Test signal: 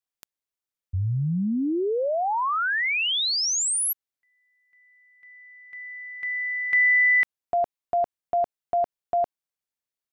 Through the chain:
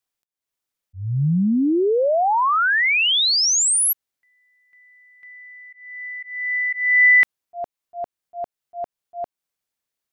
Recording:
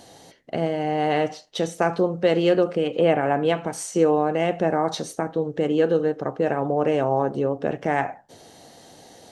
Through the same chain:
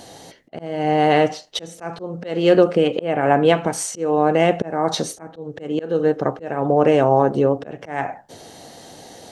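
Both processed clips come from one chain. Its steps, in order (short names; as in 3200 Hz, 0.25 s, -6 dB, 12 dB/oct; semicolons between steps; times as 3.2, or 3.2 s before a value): auto swell 0.32 s; gain +6.5 dB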